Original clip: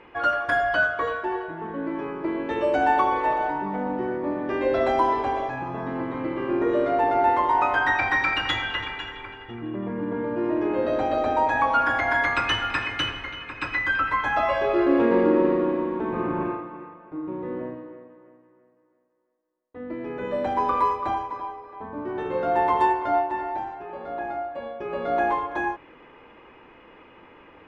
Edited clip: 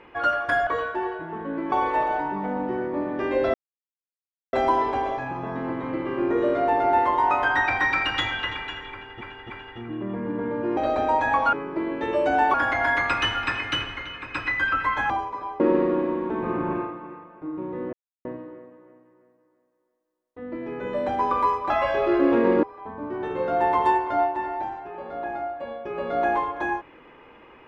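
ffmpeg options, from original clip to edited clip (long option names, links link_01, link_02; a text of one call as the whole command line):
ffmpeg -i in.wav -filter_complex "[0:a]asplit=14[link_01][link_02][link_03][link_04][link_05][link_06][link_07][link_08][link_09][link_10][link_11][link_12][link_13][link_14];[link_01]atrim=end=0.672[link_15];[link_02]atrim=start=0.958:end=2.012[link_16];[link_03]atrim=start=3.018:end=4.84,asetpts=PTS-STARTPTS,afade=type=out:start_time=1.818:duration=0.004:curve=hsin,apad=pad_dur=0.99[link_17];[link_04]atrim=start=4.84:end=9.522,asetpts=PTS-STARTPTS,afade=type=in:duration=0.004:curve=hsin[link_18];[link_05]atrim=start=9.228:end=9.522[link_19];[link_06]atrim=start=9.228:end=10.502[link_20];[link_07]atrim=start=11.048:end=11.812[link_21];[link_08]atrim=start=2.008:end=3.022[link_22];[link_09]atrim=start=11.808:end=14.372[link_23];[link_10]atrim=start=21.078:end=21.582[link_24];[link_11]atrim=start=15.298:end=17.63,asetpts=PTS-STARTPTS,afade=type=out:start_time=2.328:duration=0.004:curve=hsin,apad=pad_dur=0.32[link_25];[link_12]atrim=start=17.63:end=21.082,asetpts=PTS-STARTPTS,afade=type=in:duration=0.004:curve=hsin[link_26];[link_13]atrim=start=14.368:end=15.302[link_27];[link_14]atrim=start=21.578[link_28];[link_15][link_16]acrossfade=duration=0.004:curve1=hsin:curve2=hsin[link_29];[link_17][link_18]concat=n=2:v=0:a=1[link_30];[link_29][link_30]acrossfade=duration=0.004:curve1=hsin:curve2=hsin[link_31];[link_31][link_19]acrossfade=duration=0.004:curve1=hsin:curve2=hsin[link_32];[link_32][link_20]acrossfade=duration=0.004:curve1=hsin:curve2=hsin[link_33];[link_33][link_21]acrossfade=duration=0.004:curve1=hsin:curve2=hsin[link_34];[link_34][link_22]acrossfade=duration=0.004:curve1=hsin:curve2=hsin[link_35];[link_35][link_23]acrossfade=duration=0.004:curve1=hsin:curve2=hsin[link_36];[link_36][link_24]acrossfade=duration=0.004:curve1=hsin:curve2=hsin[link_37];[link_25][link_26]concat=n=2:v=0:a=1[link_38];[link_37][link_38]acrossfade=duration=0.004:curve1=hsin:curve2=hsin[link_39];[link_39][link_27]acrossfade=duration=0.004:curve1=hsin:curve2=hsin[link_40];[link_40][link_28]acrossfade=duration=0.004:curve1=hsin:curve2=hsin" out.wav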